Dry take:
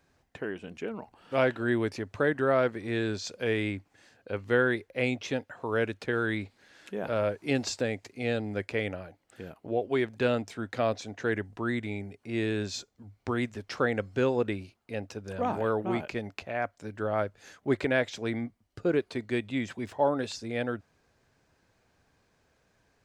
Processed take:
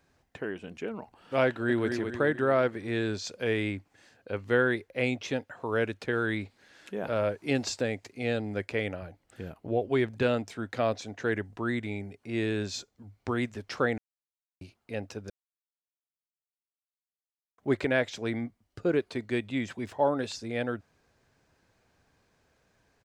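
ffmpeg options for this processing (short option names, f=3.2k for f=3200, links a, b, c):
-filter_complex "[0:a]asplit=2[a][b];[b]afade=t=in:st=1.47:d=0.01,afade=t=out:st=1.88:d=0.01,aecho=0:1:220|440|660|880|1100|1320:0.501187|0.250594|0.125297|0.0626484|0.0313242|0.0156621[c];[a][c]amix=inputs=2:normalize=0,asettb=1/sr,asplit=3[d][e][f];[d]atrim=end=9.024[g];[e]atrim=start=9.02:end=10.23,asetpts=PTS-STARTPTS,afade=t=in:d=0.004:c=qsin,afade=t=out:st=1.206:d=0.004:c=qsin,lowshelf=f=130:g=10[h];[f]atrim=start=10.226[i];[g][h]acrossfade=d=0.004:c1=hsin:c2=qsin[j];[j][i]acrossfade=d=0.004:c1=qsin:c2=hsin,asplit=5[k][l][m][n][o];[k]atrim=end=13.98,asetpts=PTS-STARTPTS,afade=t=out:st=13.976:d=0.004:c=hsin[p];[l]atrim=start=13.98:end=14.61,asetpts=PTS-STARTPTS,volume=0[q];[m]atrim=start=14.61:end=15.3,asetpts=PTS-STARTPTS,afade=t=in:d=0.004:c=hsin,afade=t=out:st=0.686:d=0.004:c=hsin[r];[n]atrim=start=15.3:end=17.58,asetpts=PTS-STARTPTS,volume=0[s];[o]atrim=start=17.58,asetpts=PTS-STARTPTS,afade=t=in:d=0.004:c=hsin[t];[p][q][r][s][t]concat=n=5:v=0:a=1"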